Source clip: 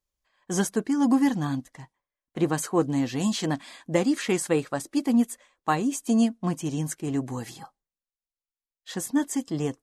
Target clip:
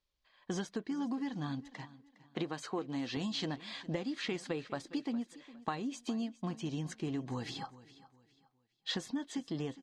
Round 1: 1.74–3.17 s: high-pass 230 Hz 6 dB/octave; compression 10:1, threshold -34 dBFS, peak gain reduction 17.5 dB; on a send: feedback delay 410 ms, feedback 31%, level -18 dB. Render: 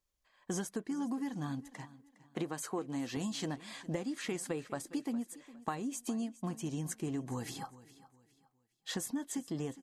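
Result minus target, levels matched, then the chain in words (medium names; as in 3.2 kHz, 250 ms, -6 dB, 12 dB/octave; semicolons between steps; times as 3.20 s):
4 kHz band -4.5 dB
1.74–3.17 s: high-pass 230 Hz 6 dB/octave; compression 10:1, threshold -34 dBFS, peak gain reduction 17.5 dB; resonant low-pass 4.1 kHz, resonance Q 1.9; on a send: feedback delay 410 ms, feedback 31%, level -18 dB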